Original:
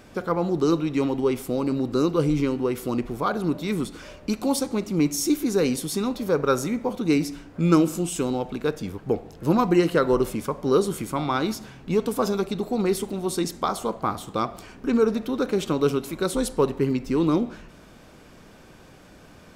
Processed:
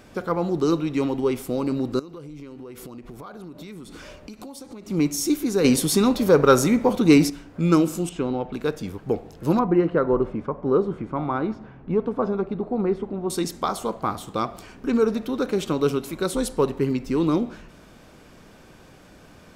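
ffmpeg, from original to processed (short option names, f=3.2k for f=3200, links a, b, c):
-filter_complex "[0:a]asettb=1/sr,asplit=3[a][b][c];[a]atrim=end=1.994[d];[b]atrim=start=1.99:end=4.9,asetpts=PTS-STARTPTS,afade=t=in:d=0.004:c=qsin,afade=t=out:st=2.906:d=0.004:c=qsin,acompressor=threshold=-35dB:ratio=16:attack=3.2:release=140:knee=1:detection=peak[e];[c]atrim=start=4.896[f];[d][e]acrossfade=d=0.004:c1=hsin:c2=qsin[g];[g][f]acrossfade=d=0.004:c1=qsin:c2=hsin,asettb=1/sr,asplit=3[h][i][j];[h]atrim=end=5.644[k];[i]atrim=start=5.64:end=7.3,asetpts=PTS-STARTPTS,afade=t=in:d=0.004:c=qsin,afade=t=out:st=1.656:d=0.004:c=qsin,acontrast=89[l];[j]atrim=start=7.296[m];[k][l]acrossfade=d=0.004:c1=hsin:c2=qsin[n];[n][m]acrossfade=d=0.004:c1=qsin:c2=hsin,asettb=1/sr,asplit=3[o][p][q];[o]atrim=end=8.094[r];[p]atrim=start=8.09:end=8.53,asetpts=PTS-STARTPTS,afade=t=in:d=0.004:c=qsin,afade=t=out:st=0.436:d=0.004:c=qsin,lowpass=2.7k[s];[q]atrim=start=8.526[t];[r][s]acrossfade=d=0.004:c1=hsin:c2=qsin[u];[u][t]acrossfade=d=0.004:c1=qsin:c2=hsin,asettb=1/sr,asplit=3[v][w][x];[v]atrim=end=9.594[y];[w]atrim=start=9.59:end=13.3,asetpts=PTS-STARTPTS,afade=t=in:d=0.004:c=qsin,afade=t=out:st=3.706:d=0.004:c=qsin,lowpass=1.4k[z];[x]atrim=start=13.296[aa];[y][z]acrossfade=d=0.004:c1=hsin:c2=qsin[ab];[ab][aa]acrossfade=d=0.004:c1=qsin:c2=hsin"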